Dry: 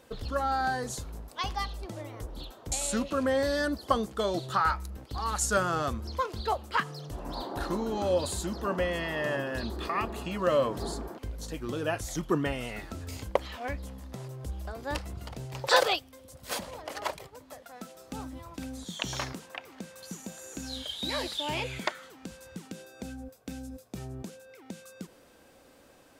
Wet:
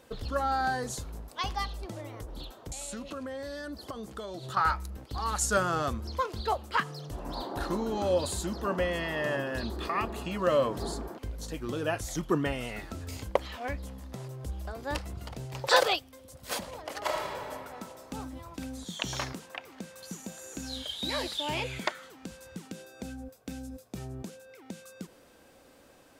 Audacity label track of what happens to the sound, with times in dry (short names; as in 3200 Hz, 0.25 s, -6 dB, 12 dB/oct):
1.950000	4.570000	compressor 10:1, threshold -35 dBFS
17.020000	17.510000	reverb throw, RT60 2.4 s, DRR -3 dB